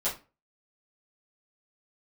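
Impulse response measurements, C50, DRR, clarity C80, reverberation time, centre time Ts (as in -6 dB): 9.5 dB, -10.5 dB, 16.5 dB, 0.30 s, 24 ms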